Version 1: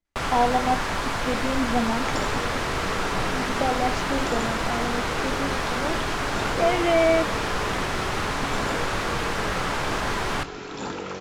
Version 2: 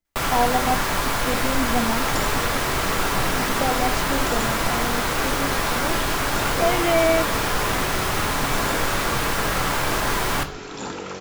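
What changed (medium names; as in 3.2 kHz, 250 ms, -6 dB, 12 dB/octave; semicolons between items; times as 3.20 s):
first sound: send +9.5 dB; master: remove distance through air 61 m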